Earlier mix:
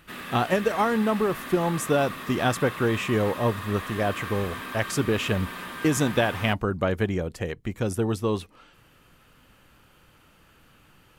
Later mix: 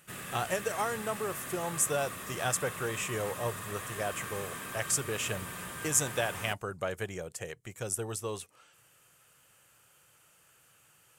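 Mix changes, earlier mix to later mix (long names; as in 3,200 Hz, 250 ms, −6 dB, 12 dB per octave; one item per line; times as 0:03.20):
speech: add high-pass filter 820 Hz 6 dB per octave
master: add graphic EQ with 10 bands 125 Hz +8 dB, 250 Hz −11 dB, 1,000 Hz −6 dB, 2,000 Hz −4 dB, 4,000 Hz −8 dB, 8,000 Hz +9 dB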